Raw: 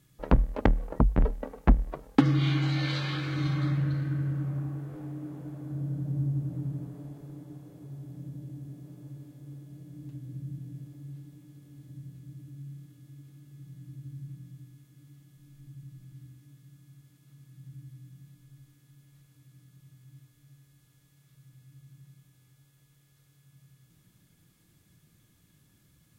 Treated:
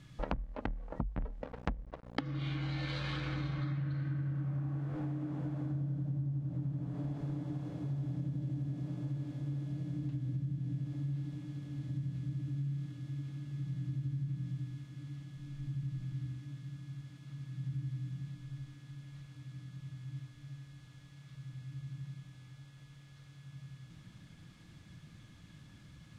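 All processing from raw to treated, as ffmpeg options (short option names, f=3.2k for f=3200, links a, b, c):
-filter_complex "[0:a]asettb=1/sr,asplit=3[a][b][c];[a]atrim=end=1.404[d];[b]atrim=start=1.4:end=3.61,asetpts=PTS-STARTPTS,afade=t=in:d=0.004:c=qsin,afade=t=out:st=2.206:d=0.004:c=qsin,equalizer=f=480:t=o:w=0.39:g=7,aeval=exprs='val(0)+0.00891*(sin(2*PI*60*n/s)+sin(2*PI*2*60*n/s)/2+sin(2*PI*3*60*n/s)/3+sin(2*PI*4*60*n/s)/4+sin(2*PI*5*60*n/s)/5)':c=same,aeval=exprs='sgn(val(0))*max(abs(val(0))-0.00944,0)':c=same[e];[c]atrim=start=3.606[f];[d][e]acrossfade=d=0.004:c1=hsin:c2=qsin[g];[g][f]acrossfade=d=0.004:c1=qsin:c2=hsin,lowpass=4.5k,acompressor=threshold=-42dB:ratio=16,equalizer=f=400:w=2.6:g=-7,volume=9.5dB"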